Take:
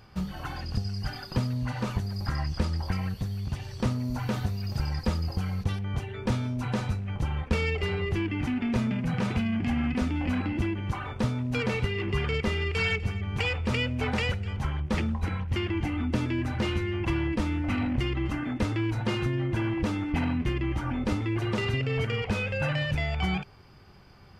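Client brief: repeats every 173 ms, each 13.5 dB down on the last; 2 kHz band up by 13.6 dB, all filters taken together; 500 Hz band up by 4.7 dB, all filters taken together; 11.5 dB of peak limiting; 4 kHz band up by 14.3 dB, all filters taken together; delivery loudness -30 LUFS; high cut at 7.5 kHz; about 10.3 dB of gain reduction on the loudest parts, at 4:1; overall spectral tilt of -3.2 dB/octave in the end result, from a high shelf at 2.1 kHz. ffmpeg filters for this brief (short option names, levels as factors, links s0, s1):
-af "lowpass=7500,equalizer=f=500:t=o:g=5,equalizer=f=2000:t=o:g=8.5,highshelf=f=2100:g=8.5,equalizer=f=4000:t=o:g=8,acompressor=threshold=0.0631:ratio=4,alimiter=limit=0.0944:level=0:latency=1,aecho=1:1:173|346:0.211|0.0444,volume=0.891"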